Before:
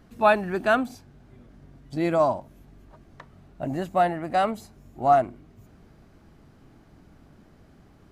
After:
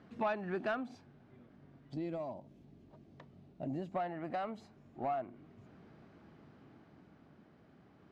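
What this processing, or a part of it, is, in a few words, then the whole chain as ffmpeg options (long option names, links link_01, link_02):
AM radio: -filter_complex "[0:a]highpass=130,lowpass=3600,acompressor=threshold=-28dB:ratio=5,asoftclip=type=tanh:threshold=-22dB,tremolo=f=0.33:d=0.37,asettb=1/sr,asplit=3[link_01][link_02][link_03];[link_01]atrim=end=1.944[link_04];[link_02]atrim=start=1.94:end=3.92,asetpts=PTS-STARTPTS,afade=type=in:duration=0.004:curve=qsin,afade=type=out:start_time=1.976:duration=0.004:curve=qsin,equalizer=frequency=1400:width_type=o:width=1.9:gain=-12.5[link_05];[link_03]atrim=start=3.916[link_06];[link_04][link_05]acrossfade=duration=0.004:curve1=hsin:curve2=qsin[link_07];[link_07][link_06]acrossfade=duration=0.004:curve1=qsin:curve2=hsin,volume=-2.5dB"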